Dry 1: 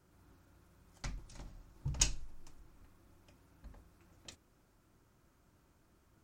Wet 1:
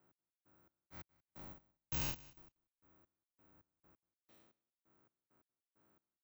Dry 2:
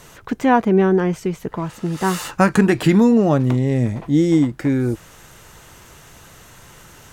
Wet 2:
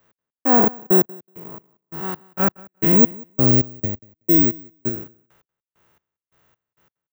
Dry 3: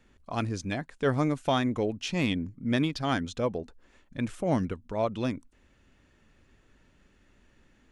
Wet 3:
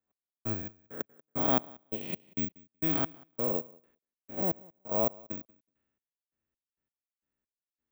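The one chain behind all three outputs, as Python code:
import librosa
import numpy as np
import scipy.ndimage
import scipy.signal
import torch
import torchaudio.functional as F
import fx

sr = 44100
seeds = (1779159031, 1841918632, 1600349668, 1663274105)

p1 = fx.spec_blur(x, sr, span_ms=237.0)
p2 = fx.highpass(p1, sr, hz=270.0, slope=6)
p3 = fx.high_shelf(p2, sr, hz=3500.0, db=-11.5)
p4 = fx.level_steps(p3, sr, step_db=13)
p5 = p3 + (p4 * librosa.db_to_amplitude(1.0))
p6 = np.clip(p5, -10.0 ** (-9.5 / 20.0), 10.0 ** (-9.5 / 20.0))
p7 = fx.step_gate(p6, sr, bpm=133, pattern='x...xx..x...x', floor_db=-60.0, edge_ms=4.5)
p8 = fx.air_absorb(p7, sr, metres=56.0)
p9 = fx.echo_feedback(p8, sr, ms=187, feedback_pct=17, wet_db=-20.5)
p10 = (np.kron(p9[::2], np.eye(2)[0]) * 2)[:len(p9)]
p11 = fx.band_widen(p10, sr, depth_pct=70)
y = p11 * librosa.db_to_amplitude(-2.0)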